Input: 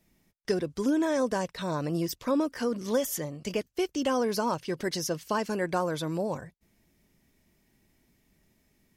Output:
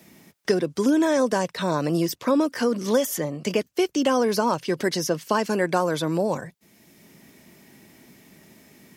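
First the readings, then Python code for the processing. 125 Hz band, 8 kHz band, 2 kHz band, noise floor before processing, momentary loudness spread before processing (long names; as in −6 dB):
+5.5 dB, +5.0 dB, +7.0 dB, −70 dBFS, 6 LU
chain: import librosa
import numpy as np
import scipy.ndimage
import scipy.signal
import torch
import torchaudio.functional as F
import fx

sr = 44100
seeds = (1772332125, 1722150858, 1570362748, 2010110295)

y = scipy.signal.sosfilt(scipy.signal.butter(2, 140.0, 'highpass', fs=sr, output='sos'), x)
y = fx.band_squash(y, sr, depth_pct=40)
y = y * librosa.db_to_amplitude(6.5)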